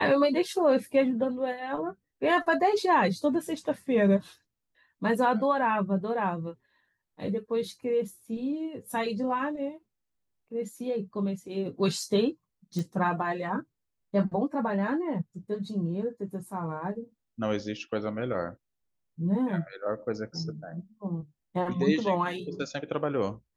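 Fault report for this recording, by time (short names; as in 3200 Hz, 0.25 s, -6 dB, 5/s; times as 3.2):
12.79 pop -21 dBFS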